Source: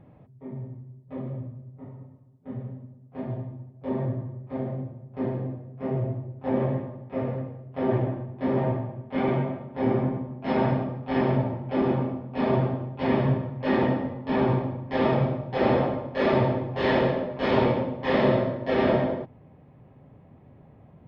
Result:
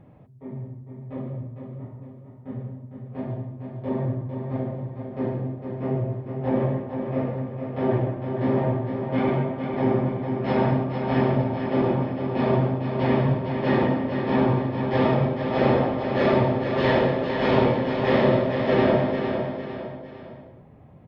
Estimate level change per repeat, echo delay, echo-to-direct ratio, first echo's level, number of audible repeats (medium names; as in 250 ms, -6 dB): -7.5 dB, 455 ms, -5.5 dB, -6.5 dB, 3